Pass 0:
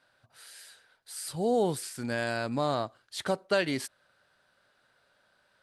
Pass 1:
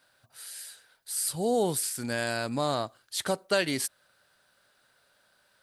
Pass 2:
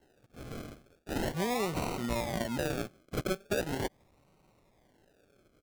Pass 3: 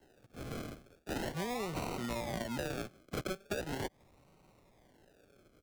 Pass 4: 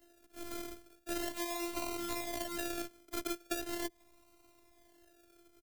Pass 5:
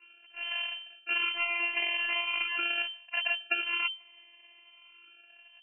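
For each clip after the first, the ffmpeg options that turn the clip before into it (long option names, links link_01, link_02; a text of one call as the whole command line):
ffmpeg -i in.wav -af "aemphasis=mode=production:type=50kf" out.wav
ffmpeg -i in.wav -af "aecho=1:1:5.3:0.37,acompressor=threshold=-28dB:ratio=6,acrusher=samples=37:mix=1:aa=0.000001:lfo=1:lforange=22.2:lforate=0.4" out.wav
ffmpeg -i in.wav -filter_complex "[0:a]acrossover=split=95|670|7800[link_01][link_02][link_03][link_04];[link_01]acompressor=threshold=-50dB:ratio=4[link_05];[link_02]acompressor=threshold=-40dB:ratio=4[link_06];[link_03]acompressor=threshold=-42dB:ratio=4[link_07];[link_04]acompressor=threshold=-52dB:ratio=4[link_08];[link_05][link_06][link_07][link_08]amix=inputs=4:normalize=0,volume=1.5dB" out.wav
ffmpeg -i in.wav -filter_complex "[0:a]afftfilt=real='hypot(re,im)*cos(PI*b)':imag='0':win_size=512:overlap=0.75,acrossover=split=550[link_01][link_02];[link_01]asplit=2[link_03][link_04];[link_04]adelay=18,volume=-11dB[link_05];[link_03][link_05]amix=inputs=2:normalize=0[link_06];[link_02]crystalizer=i=1.5:c=0[link_07];[link_06][link_07]amix=inputs=2:normalize=0,volume=2dB" out.wav
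ffmpeg -i in.wav -af "lowpass=frequency=2600:width_type=q:width=0.5098,lowpass=frequency=2600:width_type=q:width=0.6013,lowpass=frequency=2600:width_type=q:width=0.9,lowpass=frequency=2600:width_type=q:width=2.563,afreqshift=-3100,volume=8.5dB" out.wav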